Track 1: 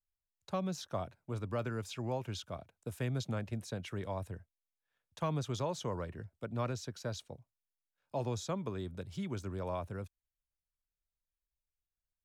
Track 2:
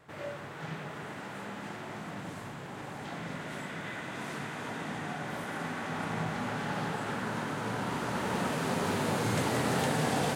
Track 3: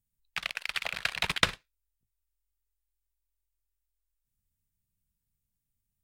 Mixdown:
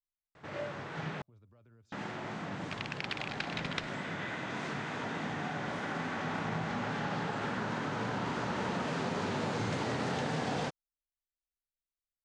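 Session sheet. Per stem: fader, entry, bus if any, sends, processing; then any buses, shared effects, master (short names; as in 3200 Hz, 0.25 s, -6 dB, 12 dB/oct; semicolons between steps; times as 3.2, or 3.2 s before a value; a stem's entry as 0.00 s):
-19.0 dB, 0.00 s, no send, echo send -21 dB, low shelf 200 Hz +7.5 dB; compressor 4:1, threshold -38 dBFS, peak gain reduction 9.5 dB; limiter -34.5 dBFS, peak gain reduction 7.5 dB
+1.0 dB, 0.35 s, muted 1.22–1.92, no send, no echo send, dry
-13.0 dB, 2.35 s, no send, no echo send, AGC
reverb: off
echo: feedback echo 0.147 s, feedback 34%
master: LPF 6500 Hz 24 dB/oct; vibrato 3.5 Hz 34 cents; compressor 4:1, threshold -31 dBFS, peak gain reduction 6.5 dB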